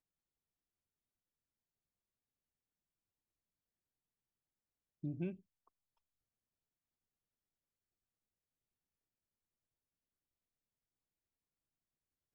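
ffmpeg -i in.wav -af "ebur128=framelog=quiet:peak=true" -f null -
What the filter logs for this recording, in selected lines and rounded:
Integrated loudness:
  I:         -43.8 LUFS
  Threshold: -54.4 LUFS
Loudness range:
  LRA:         3.9 LU
  Threshold: -71.1 LUFS
  LRA low:   -54.6 LUFS
  LRA high:  -50.7 LUFS
True peak:
  Peak:      -28.7 dBFS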